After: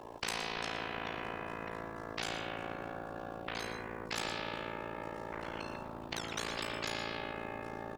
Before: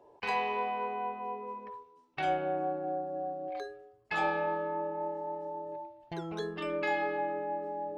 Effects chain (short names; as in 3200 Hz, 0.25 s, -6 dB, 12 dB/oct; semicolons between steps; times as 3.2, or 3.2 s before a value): echoes that change speed 0.213 s, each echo -7 st, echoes 2, each echo -6 dB; AM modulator 56 Hz, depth 100%; on a send: echo 0.117 s -13.5 dB; on the sum: spectral compressor 4:1; gain -1 dB